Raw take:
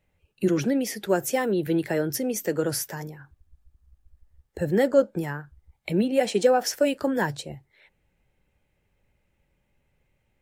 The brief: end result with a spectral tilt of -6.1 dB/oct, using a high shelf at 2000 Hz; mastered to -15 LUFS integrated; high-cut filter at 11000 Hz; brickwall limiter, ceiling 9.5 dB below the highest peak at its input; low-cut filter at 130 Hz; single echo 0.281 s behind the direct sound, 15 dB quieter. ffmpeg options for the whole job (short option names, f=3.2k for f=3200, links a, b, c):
-af "highpass=130,lowpass=11k,highshelf=f=2k:g=-8.5,alimiter=limit=-18dB:level=0:latency=1,aecho=1:1:281:0.178,volume=14dB"